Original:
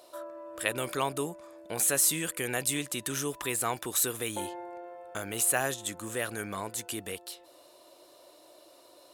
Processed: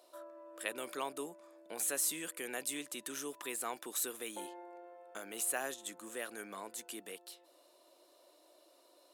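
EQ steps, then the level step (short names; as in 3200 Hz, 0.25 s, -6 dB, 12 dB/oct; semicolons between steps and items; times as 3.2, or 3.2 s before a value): HPF 220 Hz 24 dB/oct; -9.0 dB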